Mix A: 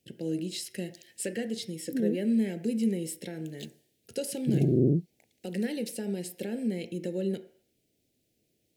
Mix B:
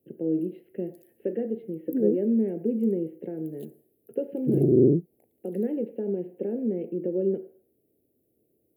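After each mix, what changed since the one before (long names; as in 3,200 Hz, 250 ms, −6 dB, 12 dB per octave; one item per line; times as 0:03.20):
speech: add Chebyshev band-pass filter 140–2,800 Hz, order 4
master: add drawn EQ curve 180 Hz 0 dB, 410 Hz +9 dB, 2,100 Hz −16 dB, 6,000 Hz −25 dB, 12,000 Hz +4 dB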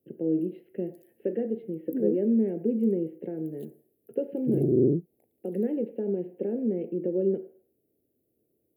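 background −3.5 dB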